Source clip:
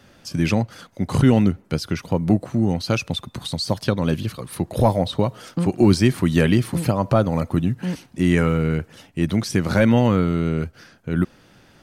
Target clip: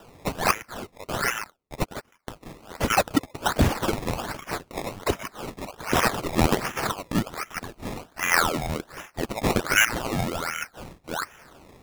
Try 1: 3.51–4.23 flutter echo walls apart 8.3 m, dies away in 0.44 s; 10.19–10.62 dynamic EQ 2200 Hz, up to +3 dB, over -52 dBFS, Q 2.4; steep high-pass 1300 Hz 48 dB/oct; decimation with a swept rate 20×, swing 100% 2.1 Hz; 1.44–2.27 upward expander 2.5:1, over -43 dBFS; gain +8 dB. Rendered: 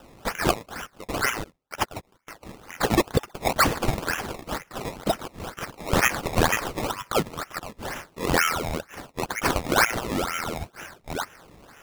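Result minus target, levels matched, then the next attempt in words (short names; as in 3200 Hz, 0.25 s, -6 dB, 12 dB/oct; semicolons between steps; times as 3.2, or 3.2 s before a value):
decimation with a swept rate: distortion +4 dB
3.51–4.23 flutter echo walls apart 8.3 m, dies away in 0.44 s; 10.19–10.62 dynamic EQ 2200 Hz, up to +3 dB, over -52 dBFS, Q 2.4; steep high-pass 1300 Hz 48 dB/oct; decimation with a swept rate 20×, swing 100% 1.3 Hz; 1.44–2.27 upward expander 2.5:1, over -43 dBFS; gain +8 dB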